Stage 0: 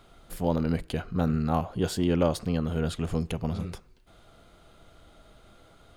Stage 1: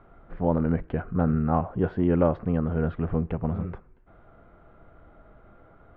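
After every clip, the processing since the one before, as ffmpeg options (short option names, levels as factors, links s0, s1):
-af "lowpass=f=1800:w=0.5412,lowpass=f=1800:w=1.3066,volume=1.33"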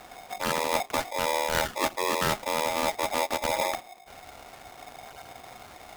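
-af "areverse,acompressor=threshold=0.0316:ratio=6,areverse,acrusher=samples=23:mix=1:aa=0.000001:lfo=1:lforange=13.8:lforate=0.63,aeval=exprs='val(0)*sgn(sin(2*PI*730*n/s))':c=same,volume=2"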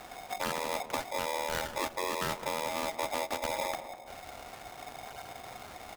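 -filter_complex "[0:a]acompressor=threshold=0.0316:ratio=6,asplit=2[s0][s1];[s1]adelay=200,lowpass=f=1200:p=1,volume=0.299,asplit=2[s2][s3];[s3]adelay=200,lowpass=f=1200:p=1,volume=0.49,asplit=2[s4][s5];[s5]adelay=200,lowpass=f=1200:p=1,volume=0.49,asplit=2[s6][s7];[s7]adelay=200,lowpass=f=1200:p=1,volume=0.49,asplit=2[s8][s9];[s9]adelay=200,lowpass=f=1200:p=1,volume=0.49[s10];[s0][s2][s4][s6][s8][s10]amix=inputs=6:normalize=0"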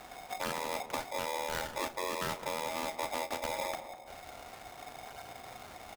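-filter_complex "[0:a]asplit=2[s0][s1];[s1]adelay=36,volume=0.224[s2];[s0][s2]amix=inputs=2:normalize=0,volume=0.75"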